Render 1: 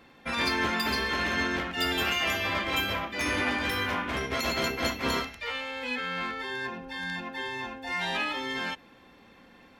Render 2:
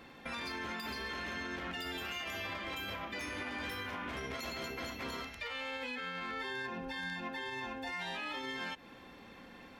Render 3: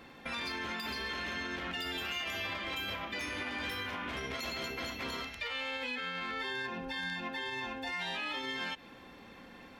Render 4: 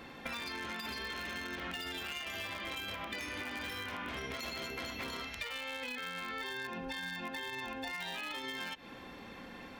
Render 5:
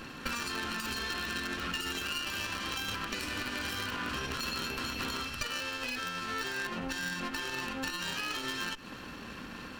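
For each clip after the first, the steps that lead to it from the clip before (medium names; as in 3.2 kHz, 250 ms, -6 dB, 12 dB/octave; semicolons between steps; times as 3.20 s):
compression, threshold -37 dBFS, peak gain reduction 13 dB; peak limiter -33 dBFS, peak gain reduction 6.5 dB; trim +1.5 dB
dynamic bell 3.3 kHz, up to +4 dB, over -53 dBFS, Q 1; trim +1 dB
in parallel at -8 dB: bit crusher 5-bit; on the sum: compression, threshold -41 dBFS, peak gain reduction 9.5 dB; trim +3.5 dB
comb filter that takes the minimum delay 0.7 ms; trim +6.5 dB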